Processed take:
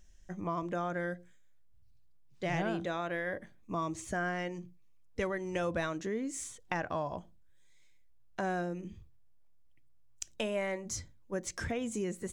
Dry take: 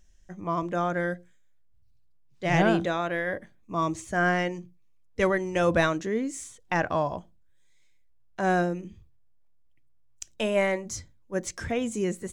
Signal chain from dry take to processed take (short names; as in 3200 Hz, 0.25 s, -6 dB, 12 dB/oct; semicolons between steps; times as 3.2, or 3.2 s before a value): compressor 3:1, threshold -34 dBFS, peak gain reduction 12.5 dB